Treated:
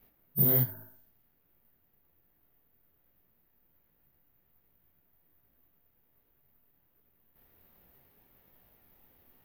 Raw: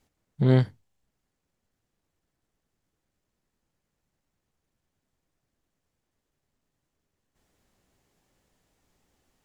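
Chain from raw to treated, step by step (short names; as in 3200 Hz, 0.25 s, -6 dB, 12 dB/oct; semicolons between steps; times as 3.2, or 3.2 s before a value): de-hum 53.11 Hz, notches 34; pre-echo 37 ms -13.5 dB; compressor 16:1, threshold -30 dBFS, peak gain reduction 15 dB; low-pass opened by the level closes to 2700 Hz; careless resampling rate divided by 3×, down filtered, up zero stuff; detuned doubles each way 44 cents; gain +8.5 dB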